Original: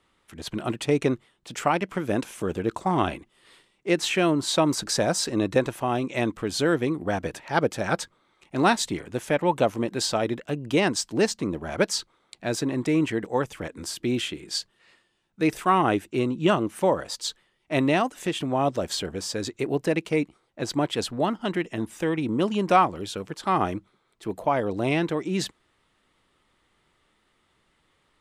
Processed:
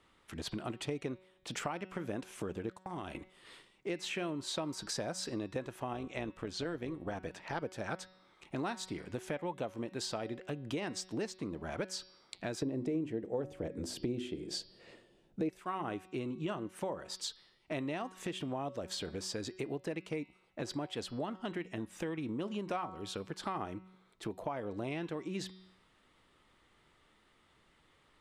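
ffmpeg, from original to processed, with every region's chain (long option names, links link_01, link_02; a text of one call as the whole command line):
ffmpeg -i in.wav -filter_complex "[0:a]asettb=1/sr,asplit=3[link_01][link_02][link_03];[link_01]atrim=end=2.734[link_04];[link_02]atrim=start=2.73:end=3.15,asetpts=PTS-STARTPTS,afade=type=in:duration=0.004:curve=qsin,afade=type=out:start_time=0.416:duration=0.004:curve=qsin,aemphasis=mode=production:type=cd,agate=range=-27dB:threshold=-32dB:ratio=16:release=100:detection=peak,acompressor=threshold=-32dB:ratio=6:attack=3.2:release=140:knee=1:detection=peak[link_05];[link_03]atrim=start=3.146[link_06];[link_04][link_05]acrossfade=duration=0.004:curve1=hsin:curve2=qsin[link_07];[link_07][link_06]acrossfade=duration=0.004:curve1=qsin:curve2=hsin,asettb=1/sr,asplit=3[link_08][link_09][link_10];[link_08]atrim=end=5.934[link_11];[link_09]atrim=start=5.93:end=7.62,asetpts=PTS-STARTPTS,afade=type=in:duration=0.004:curve=qsin,afade=type=out:start_time=1.686:duration=0.004:curve=qsin,acrossover=split=7200[link_12][link_13];[link_13]acompressor=threshold=-54dB:ratio=4:attack=1:release=60[link_14];[link_12][link_14]amix=inputs=2:normalize=0,tremolo=f=180:d=0.519[link_15];[link_10]atrim=start=7.616[link_16];[link_11][link_15]acrossfade=duration=0.004:curve1=hsin:curve2=qsin[link_17];[link_17][link_16]acrossfade=duration=0.004:curve1=qsin:curve2=hsin,asettb=1/sr,asplit=3[link_18][link_19][link_20];[link_18]atrim=end=12.624[link_21];[link_19]atrim=start=12.62:end=15.49,asetpts=PTS-STARTPTS,afade=type=in:duration=0.004:curve=qsin,afade=type=out:start_time=2.866:duration=0.004:curve=qsin,lowshelf=frequency=780:width_type=q:width=1.5:gain=10,bandreject=frequency=50:width_type=h:width=6,bandreject=frequency=100:width_type=h:width=6,bandreject=frequency=150:width_type=h:width=6,bandreject=frequency=200:width_type=h:width=6,bandreject=frequency=250:width_type=h:width=6,bandreject=frequency=300:width_type=h:width=6,bandreject=frequency=350:width_type=h:width=6[link_22];[link_20]atrim=start=15.486[link_23];[link_21][link_22]acrossfade=duration=0.004:curve1=hsin:curve2=qsin[link_24];[link_24][link_23]acrossfade=duration=0.004:curve1=qsin:curve2=hsin,highshelf=frequency=9000:gain=-6.5,bandreject=frequency=186.6:width_type=h:width=4,bandreject=frequency=373.2:width_type=h:width=4,bandreject=frequency=559.8:width_type=h:width=4,bandreject=frequency=746.4:width_type=h:width=4,bandreject=frequency=933:width_type=h:width=4,bandreject=frequency=1119.6:width_type=h:width=4,bandreject=frequency=1306.2:width_type=h:width=4,bandreject=frequency=1492.8:width_type=h:width=4,bandreject=frequency=1679.4:width_type=h:width=4,bandreject=frequency=1866:width_type=h:width=4,bandreject=frequency=2052.6:width_type=h:width=4,bandreject=frequency=2239.2:width_type=h:width=4,bandreject=frequency=2425.8:width_type=h:width=4,bandreject=frequency=2612.4:width_type=h:width=4,bandreject=frequency=2799:width_type=h:width=4,bandreject=frequency=2985.6:width_type=h:width=4,bandreject=frequency=3172.2:width_type=h:width=4,bandreject=frequency=3358.8:width_type=h:width=4,bandreject=frequency=3545.4:width_type=h:width=4,bandreject=frequency=3732:width_type=h:width=4,bandreject=frequency=3918.6:width_type=h:width=4,bandreject=frequency=4105.2:width_type=h:width=4,bandreject=frequency=4291.8:width_type=h:width=4,bandreject=frequency=4478.4:width_type=h:width=4,bandreject=frequency=4665:width_type=h:width=4,bandreject=frequency=4851.6:width_type=h:width=4,bandreject=frequency=5038.2:width_type=h:width=4,bandreject=frequency=5224.8:width_type=h:width=4,bandreject=frequency=5411.4:width_type=h:width=4,bandreject=frequency=5598:width_type=h:width=4,acompressor=threshold=-38dB:ratio=4" out.wav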